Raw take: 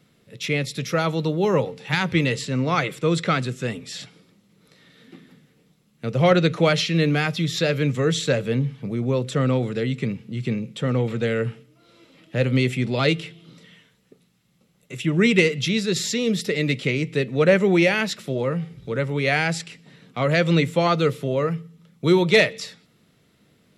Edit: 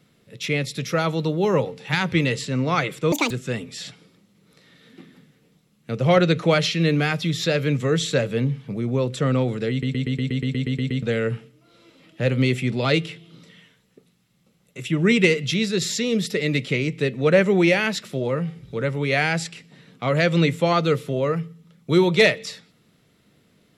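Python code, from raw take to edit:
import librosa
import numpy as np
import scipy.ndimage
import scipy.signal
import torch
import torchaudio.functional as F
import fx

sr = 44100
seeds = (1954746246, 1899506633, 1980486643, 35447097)

y = fx.edit(x, sr, fx.speed_span(start_s=3.12, length_s=0.33, speed=1.78),
    fx.stutter_over(start_s=9.85, slice_s=0.12, count=11), tone=tone)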